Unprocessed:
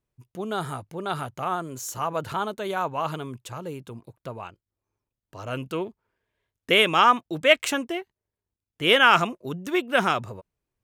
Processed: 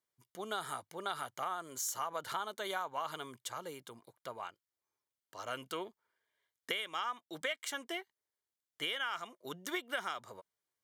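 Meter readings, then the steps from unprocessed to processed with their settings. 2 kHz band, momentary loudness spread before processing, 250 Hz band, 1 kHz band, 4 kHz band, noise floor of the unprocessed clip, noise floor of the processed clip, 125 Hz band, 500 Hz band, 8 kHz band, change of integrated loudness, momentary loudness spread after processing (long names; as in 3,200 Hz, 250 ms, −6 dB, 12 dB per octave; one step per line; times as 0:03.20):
−16.0 dB, 20 LU, −18.5 dB, −15.0 dB, −14.5 dB, below −85 dBFS, below −85 dBFS, −22.5 dB, −17.0 dB, −5.0 dB, −16.0 dB, 12 LU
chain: high-pass filter 1,400 Hz 6 dB per octave
downward compressor 12 to 1, threshold −33 dBFS, peak gain reduction 19.5 dB
Butterworth band-reject 2,600 Hz, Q 6.3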